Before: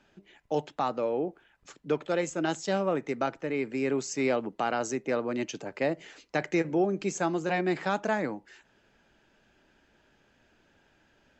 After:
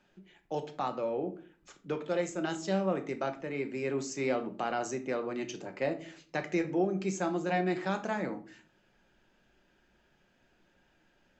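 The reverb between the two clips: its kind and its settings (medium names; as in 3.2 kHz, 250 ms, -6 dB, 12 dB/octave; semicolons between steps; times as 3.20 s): simulated room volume 370 m³, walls furnished, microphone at 0.95 m; trim -5 dB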